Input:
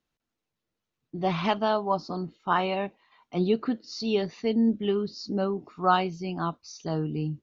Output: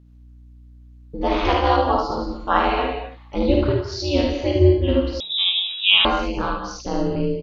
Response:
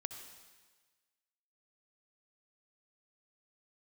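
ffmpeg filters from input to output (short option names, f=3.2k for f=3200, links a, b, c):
-filter_complex "[0:a]aecho=1:1:52|75:0.631|0.668,aeval=exprs='val(0)*sin(2*PI*140*n/s)':c=same,aeval=exprs='val(0)+0.00178*(sin(2*PI*60*n/s)+sin(2*PI*2*60*n/s)/2+sin(2*PI*3*60*n/s)/3+sin(2*PI*4*60*n/s)/4+sin(2*PI*5*60*n/s)/5)':c=same[a];[1:a]atrim=start_sample=2205,atrim=end_sample=6615,asetrate=28224,aresample=44100[b];[a][b]afir=irnorm=-1:irlink=0,asettb=1/sr,asplit=3[c][d][e];[c]atrim=end=5.204[f];[d]atrim=start=5.2:end=6.05,asetpts=PTS-STARTPTS,afade=t=in:d=0.004:c=qsin,afade=t=out:st=0.846:d=0.004:c=qsin,lowpass=f=3.3k:t=q:w=0.5098,lowpass=f=3.3k:t=q:w=0.6013,lowpass=f=3.3k:t=q:w=0.9,lowpass=f=3.3k:t=q:w=2.563,afreqshift=-3900[g];[e]atrim=start=6.046[h];[f][g]acrossfade=d=0.004:c1=hsin:c2=qsin[i];[i][h]acrossfade=d=0.004:c1=qsin:c2=hsin,volume=7.5dB"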